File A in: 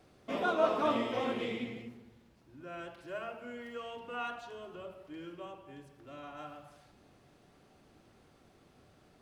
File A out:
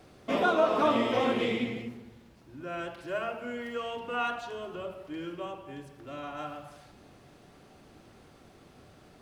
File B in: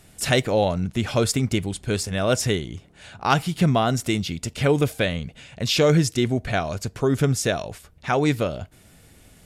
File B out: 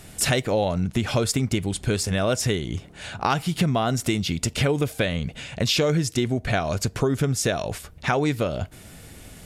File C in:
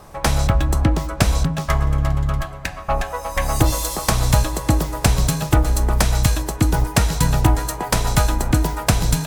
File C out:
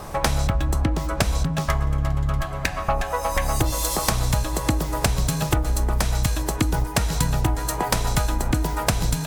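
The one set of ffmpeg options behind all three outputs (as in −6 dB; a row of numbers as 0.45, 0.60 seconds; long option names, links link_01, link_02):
-af "acompressor=threshold=-28dB:ratio=4,volume=7.5dB"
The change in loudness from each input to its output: +5.5, −1.5, −4.0 LU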